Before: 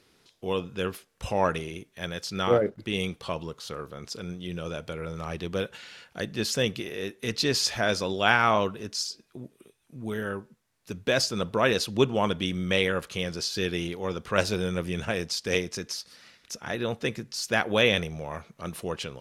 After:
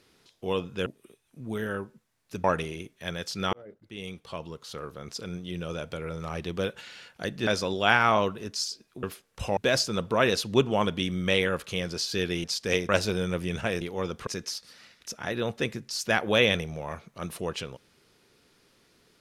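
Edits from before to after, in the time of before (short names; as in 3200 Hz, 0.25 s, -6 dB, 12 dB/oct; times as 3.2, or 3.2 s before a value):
0.86–1.4 swap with 9.42–11
2.49–4.02 fade in
6.43–7.86 cut
13.87–14.33 swap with 15.25–15.7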